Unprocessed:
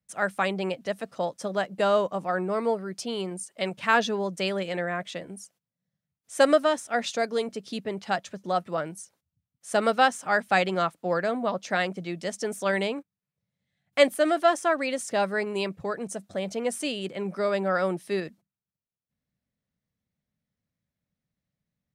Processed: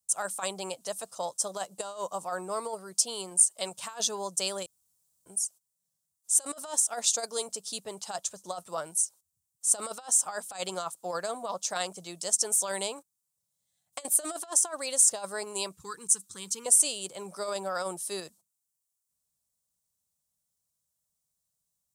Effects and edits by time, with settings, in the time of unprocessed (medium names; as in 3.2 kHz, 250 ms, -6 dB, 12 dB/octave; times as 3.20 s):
4.66–5.26 s: room tone
15.73–16.66 s: Butterworth band-stop 650 Hz, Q 0.92
whole clip: graphic EQ 125/250/1000/2000/8000 Hz -4/-9/+8/-12/+11 dB; compressor with a negative ratio -25 dBFS, ratio -0.5; pre-emphasis filter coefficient 0.8; trim +5 dB